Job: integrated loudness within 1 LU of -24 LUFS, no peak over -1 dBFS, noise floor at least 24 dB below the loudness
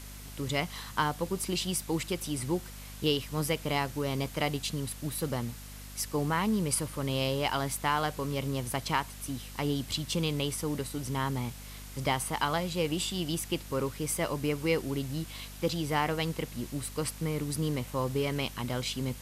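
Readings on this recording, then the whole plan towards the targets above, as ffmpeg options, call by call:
hum 50 Hz; harmonics up to 250 Hz; hum level -44 dBFS; noise floor -45 dBFS; noise floor target -56 dBFS; loudness -32.0 LUFS; peak -12.5 dBFS; loudness target -24.0 LUFS
-> -af "bandreject=f=50:t=h:w=6,bandreject=f=100:t=h:w=6,bandreject=f=150:t=h:w=6,bandreject=f=200:t=h:w=6,bandreject=f=250:t=h:w=6"
-af "afftdn=nr=11:nf=-45"
-af "volume=8dB"

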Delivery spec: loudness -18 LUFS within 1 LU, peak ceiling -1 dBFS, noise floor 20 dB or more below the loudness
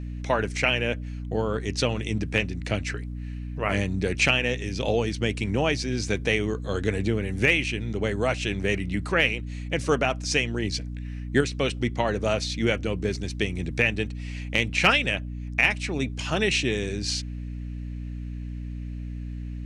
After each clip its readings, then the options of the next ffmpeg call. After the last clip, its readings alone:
hum 60 Hz; harmonics up to 300 Hz; hum level -31 dBFS; loudness -26.0 LUFS; peak -5.5 dBFS; loudness target -18.0 LUFS
-> -af "bandreject=f=60:t=h:w=6,bandreject=f=120:t=h:w=6,bandreject=f=180:t=h:w=6,bandreject=f=240:t=h:w=6,bandreject=f=300:t=h:w=6"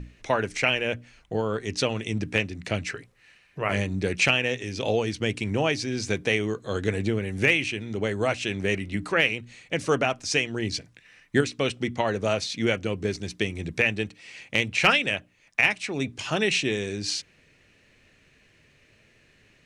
hum none; loudness -26.0 LUFS; peak -6.0 dBFS; loudness target -18.0 LUFS
-> -af "volume=8dB,alimiter=limit=-1dB:level=0:latency=1"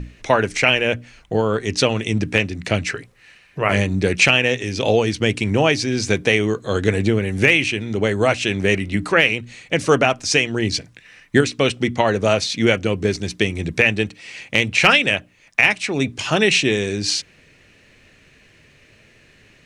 loudness -18.5 LUFS; peak -1.0 dBFS; noise floor -53 dBFS

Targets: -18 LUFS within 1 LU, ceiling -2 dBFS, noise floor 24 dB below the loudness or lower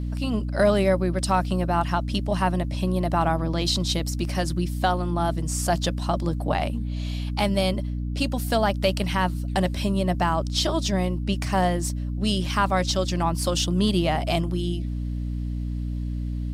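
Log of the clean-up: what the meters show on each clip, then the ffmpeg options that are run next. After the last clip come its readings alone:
hum 60 Hz; harmonics up to 300 Hz; hum level -26 dBFS; loudness -25.0 LUFS; peak -9.0 dBFS; loudness target -18.0 LUFS
-> -af "bandreject=f=60:t=h:w=6,bandreject=f=120:t=h:w=6,bandreject=f=180:t=h:w=6,bandreject=f=240:t=h:w=6,bandreject=f=300:t=h:w=6"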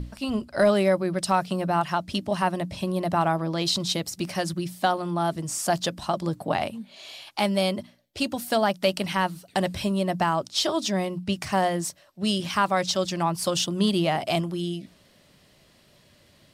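hum none; loudness -26.0 LUFS; peak -10.5 dBFS; loudness target -18.0 LUFS
-> -af "volume=8dB"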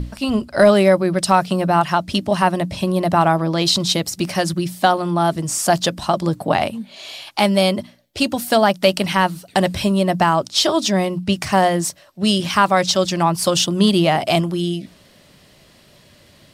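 loudness -18.0 LUFS; peak -2.5 dBFS; noise floor -51 dBFS

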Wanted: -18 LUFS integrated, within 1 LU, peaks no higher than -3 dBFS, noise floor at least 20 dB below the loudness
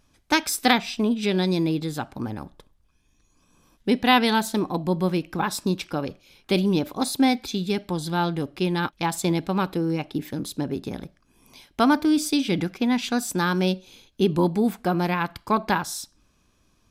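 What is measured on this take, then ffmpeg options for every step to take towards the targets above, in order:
loudness -24.0 LUFS; peak -4.5 dBFS; loudness target -18.0 LUFS
-> -af "volume=6dB,alimiter=limit=-3dB:level=0:latency=1"

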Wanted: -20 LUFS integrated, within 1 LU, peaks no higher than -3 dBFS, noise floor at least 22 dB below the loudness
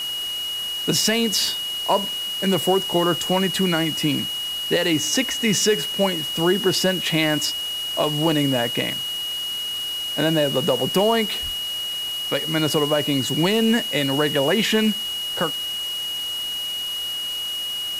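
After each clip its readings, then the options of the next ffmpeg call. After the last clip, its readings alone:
steady tone 2900 Hz; tone level -25 dBFS; noise floor -28 dBFS; noise floor target -43 dBFS; loudness -21.0 LUFS; peak -7.0 dBFS; loudness target -20.0 LUFS
-> -af "bandreject=f=2.9k:w=30"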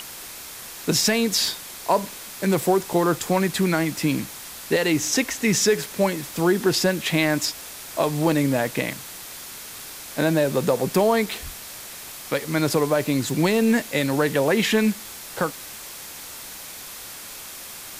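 steady tone none; noise floor -38 dBFS; noise floor target -44 dBFS
-> -af "afftdn=nr=6:nf=-38"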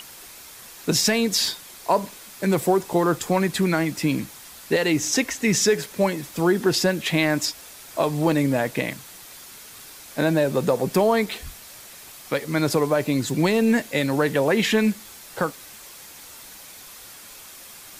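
noise floor -43 dBFS; noise floor target -45 dBFS
-> -af "afftdn=nr=6:nf=-43"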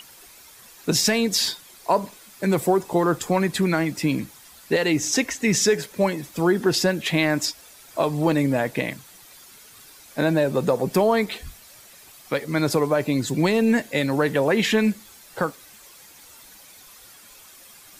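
noise floor -48 dBFS; loudness -22.5 LUFS; peak -8.0 dBFS; loudness target -20.0 LUFS
-> -af "volume=2.5dB"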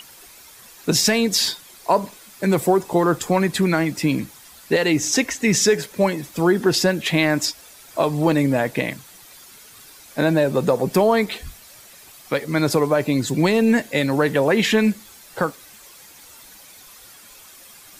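loudness -20.0 LUFS; peak -5.5 dBFS; noise floor -46 dBFS

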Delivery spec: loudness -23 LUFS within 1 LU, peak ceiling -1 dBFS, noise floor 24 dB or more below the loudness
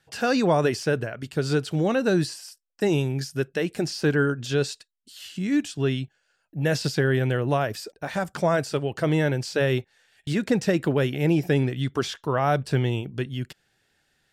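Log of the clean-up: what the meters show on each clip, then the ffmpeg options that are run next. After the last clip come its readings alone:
loudness -25.0 LUFS; peak -10.0 dBFS; loudness target -23.0 LUFS
-> -af "volume=2dB"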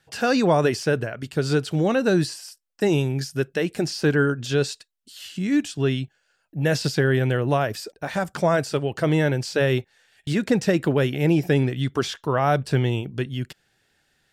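loudness -23.0 LUFS; peak -8.0 dBFS; noise floor -69 dBFS

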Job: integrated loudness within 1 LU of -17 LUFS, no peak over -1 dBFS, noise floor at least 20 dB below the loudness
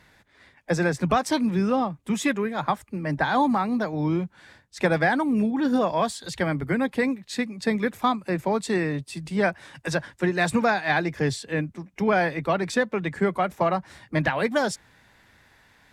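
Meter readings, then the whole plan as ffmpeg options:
loudness -25.0 LUFS; peak -8.0 dBFS; loudness target -17.0 LUFS
-> -af "volume=8dB,alimiter=limit=-1dB:level=0:latency=1"

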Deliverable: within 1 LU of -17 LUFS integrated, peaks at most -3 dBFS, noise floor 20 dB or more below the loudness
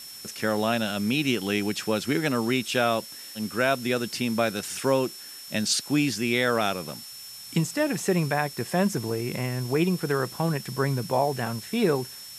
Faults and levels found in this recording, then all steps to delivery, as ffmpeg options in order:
steady tone 5400 Hz; tone level -42 dBFS; noise floor -42 dBFS; noise floor target -46 dBFS; loudness -26.0 LUFS; peak -9.5 dBFS; loudness target -17.0 LUFS
-> -af "bandreject=f=5.4k:w=30"
-af "afftdn=nr=6:nf=-42"
-af "volume=9dB,alimiter=limit=-3dB:level=0:latency=1"

